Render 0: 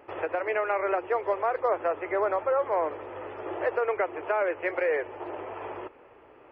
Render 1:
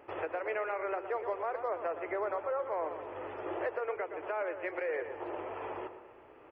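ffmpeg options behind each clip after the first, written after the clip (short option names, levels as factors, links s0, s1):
-filter_complex "[0:a]asplit=2[s0][s1];[s1]adelay=117,lowpass=f=2100:p=1,volume=0.316,asplit=2[s2][s3];[s3]adelay=117,lowpass=f=2100:p=1,volume=0.48,asplit=2[s4][s5];[s5]adelay=117,lowpass=f=2100:p=1,volume=0.48,asplit=2[s6][s7];[s7]adelay=117,lowpass=f=2100:p=1,volume=0.48,asplit=2[s8][s9];[s9]adelay=117,lowpass=f=2100:p=1,volume=0.48[s10];[s0][s2][s4][s6][s8][s10]amix=inputs=6:normalize=0,alimiter=limit=0.075:level=0:latency=1:release=417,volume=0.708"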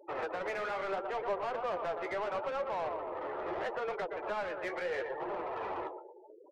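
-filter_complex "[0:a]afftfilt=real='re*gte(hypot(re,im),0.00708)':imag='im*gte(hypot(re,im),0.00708)':win_size=1024:overlap=0.75,asplit=2[s0][s1];[s1]highpass=f=720:p=1,volume=8.91,asoftclip=type=tanh:threshold=0.0562[s2];[s0][s2]amix=inputs=2:normalize=0,lowpass=f=2600:p=1,volume=0.501,flanger=delay=4.8:depth=9.5:regen=41:speed=0.75:shape=triangular"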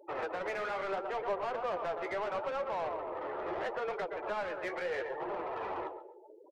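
-af "aecho=1:1:135|270:0.106|0.0212"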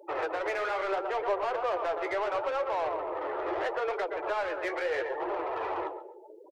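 -af "firequalizer=gain_entry='entry(120,0);entry(180,-26);entry(310,4)':delay=0.05:min_phase=1,volume=1.12"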